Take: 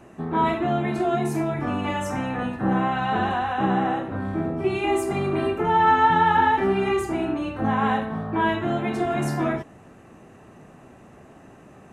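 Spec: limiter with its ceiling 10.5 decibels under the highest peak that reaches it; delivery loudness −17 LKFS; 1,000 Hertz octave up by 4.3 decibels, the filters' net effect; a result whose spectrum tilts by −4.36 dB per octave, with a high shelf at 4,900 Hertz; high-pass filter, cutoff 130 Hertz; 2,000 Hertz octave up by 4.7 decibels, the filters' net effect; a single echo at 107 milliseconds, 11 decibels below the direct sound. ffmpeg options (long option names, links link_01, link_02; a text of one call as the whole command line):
ffmpeg -i in.wav -af "highpass=130,equalizer=frequency=1000:width_type=o:gain=4.5,equalizer=frequency=2000:width_type=o:gain=5,highshelf=frequency=4900:gain=-5.5,alimiter=limit=-14dB:level=0:latency=1,aecho=1:1:107:0.282,volume=6dB" out.wav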